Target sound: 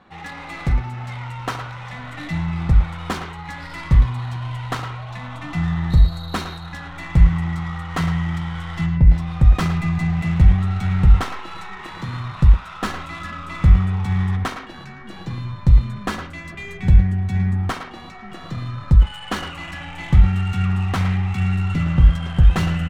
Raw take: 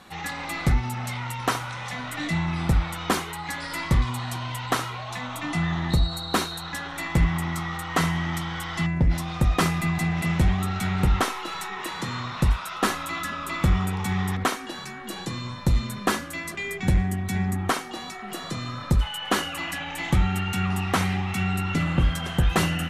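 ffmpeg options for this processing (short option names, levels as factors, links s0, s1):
-filter_complex "[0:a]adynamicsmooth=sensitivity=4.5:basefreq=2400,asplit=2[s0][s1];[s1]adelay=110,highpass=300,lowpass=3400,asoftclip=type=hard:threshold=0.1,volume=0.501[s2];[s0][s2]amix=inputs=2:normalize=0,asubboost=boost=4:cutoff=150,volume=0.841"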